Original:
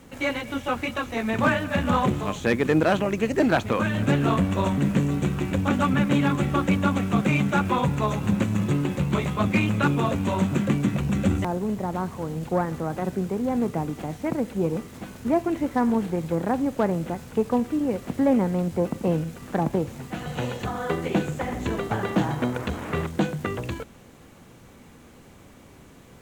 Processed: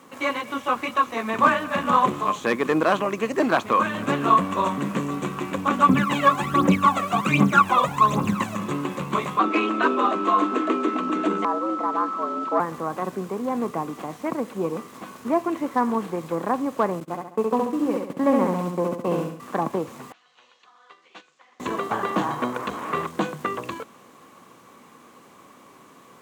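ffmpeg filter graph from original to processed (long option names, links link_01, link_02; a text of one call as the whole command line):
ffmpeg -i in.wav -filter_complex "[0:a]asettb=1/sr,asplit=3[link_01][link_02][link_03];[link_01]atrim=end=5.894[link_04];[link_02]atrim=start=5.89:end=8.56,asetpts=PTS-STARTPTS,afade=type=in:duration=0.004:curve=qsin,afade=type=out:start_time=2.666:duration=0.004:curve=qsin,aphaser=in_gain=1:out_gain=1:delay=1.8:decay=0.76:speed=1.3:type=triangular,acrusher=bits=7:mix=0:aa=0.5[link_05];[link_03]atrim=start=8.556[link_06];[link_04][link_05]acrossfade=duration=0.004:curve1=hsin:curve2=qsin[link_07];[link_07][link_06]acrossfade=duration=0.004:curve1=qsin:curve2=hsin,asettb=1/sr,asplit=3[link_08][link_09][link_10];[link_08]atrim=end=9.394[link_11];[link_09]atrim=start=9.39:end=12.6,asetpts=PTS-STARTPTS,afade=type=in:duration=0.004:curve=qsin,afade=type=out:start_time=3.206:duration=0.004:curve=qsin,aeval=exprs='val(0)+0.0282*sin(2*PI*1200*n/s)':channel_layout=same,afreqshift=110,highpass=180,lowpass=5200[link_12];[link_10]atrim=start=12.596[link_13];[link_11][link_12]acrossfade=duration=0.004:curve1=hsin:curve2=qsin[link_14];[link_14][link_13]acrossfade=duration=0.004:curve1=qsin:curve2=hsin,asettb=1/sr,asplit=3[link_15][link_16][link_17];[link_15]atrim=end=17.004[link_18];[link_16]atrim=start=17:end=19.4,asetpts=PTS-STARTPTS,afade=type=in:duration=0.004:curve=qsin,afade=type=out:start_time=2.396:duration=0.004:curve=qsin,agate=range=-27dB:threshold=-30dB:ratio=16:release=100:detection=peak,aecho=1:1:68|136|204|272|340|408:0.708|0.311|0.137|0.0603|0.0265|0.0117,atrim=end_sample=105840[link_19];[link_17]atrim=start=19.396[link_20];[link_18][link_19]acrossfade=duration=0.004:curve1=hsin:curve2=qsin[link_21];[link_21][link_20]acrossfade=duration=0.004:curve1=qsin:curve2=hsin,asettb=1/sr,asplit=3[link_22][link_23][link_24];[link_22]atrim=end=20.124[link_25];[link_23]atrim=start=20.12:end=21.6,asetpts=PTS-STARTPTS,afade=type=in:duration=0.004:curve=qsin,afade=type=out:start_time=1.476:duration=0.004:curve=qsin,lowpass=frequency=5100:width=0.5412,lowpass=frequency=5100:width=1.3066,agate=range=-10dB:threshold=-23dB:ratio=16:release=100:detection=peak,aderivative[link_26];[link_24]atrim=start=21.596[link_27];[link_25][link_26]acrossfade=duration=0.004:curve1=hsin:curve2=qsin[link_28];[link_28][link_27]acrossfade=duration=0.004:curve1=qsin:curve2=hsin,highpass=240,equalizer=frequency=1100:width=5.2:gain=14" out.wav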